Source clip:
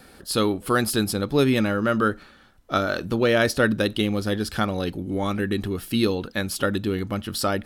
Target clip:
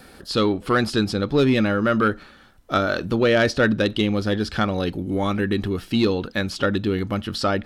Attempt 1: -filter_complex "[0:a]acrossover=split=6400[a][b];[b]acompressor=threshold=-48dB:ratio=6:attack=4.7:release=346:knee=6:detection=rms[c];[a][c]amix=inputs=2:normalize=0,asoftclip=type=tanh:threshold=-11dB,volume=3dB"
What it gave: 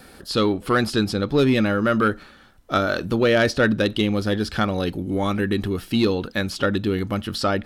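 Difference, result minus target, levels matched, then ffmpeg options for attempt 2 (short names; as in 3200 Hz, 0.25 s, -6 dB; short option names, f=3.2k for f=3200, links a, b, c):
compressor: peak gain reduction -7 dB
-filter_complex "[0:a]acrossover=split=6400[a][b];[b]acompressor=threshold=-56.5dB:ratio=6:attack=4.7:release=346:knee=6:detection=rms[c];[a][c]amix=inputs=2:normalize=0,asoftclip=type=tanh:threshold=-11dB,volume=3dB"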